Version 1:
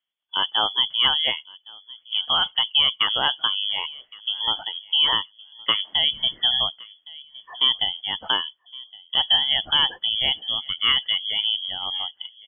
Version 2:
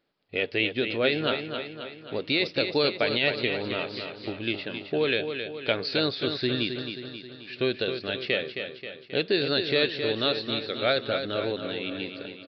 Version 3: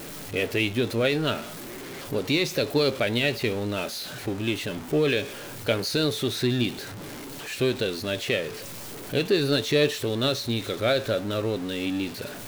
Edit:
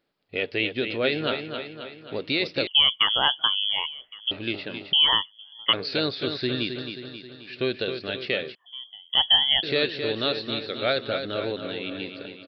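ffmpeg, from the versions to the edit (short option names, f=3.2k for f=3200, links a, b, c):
-filter_complex "[0:a]asplit=3[a][b][c];[1:a]asplit=4[d][e][f][g];[d]atrim=end=2.672[h];[a]atrim=start=2.668:end=4.312[i];[e]atrim=start=4.308:end=4.932[j];[b]atrim=start=4.928:end=5.732[k];[f]atrim=start=5.728:end=8.552[l];[c]atrim=start=8.548:end=9.632[m];[g]atrim=start=9.628[n];[h][i]acrossfade=d=0.004:c1=hsin:c2=hsin[o];[o][j]acrossfade=d=0.004:c1=hsin:c2=hsin[p];[p][k]acrossfade=d=0.004:c1=hsin:c2=hsin[q];[q][l]acrossfade=d=0.004:c1=hsin:c2=hsin[r];[r][m]acrossfade=d=0.004:c1=hsin:c2=hsin[s];[s][n]acrossfade=d=0.004:c1=hsin:c2=hsin"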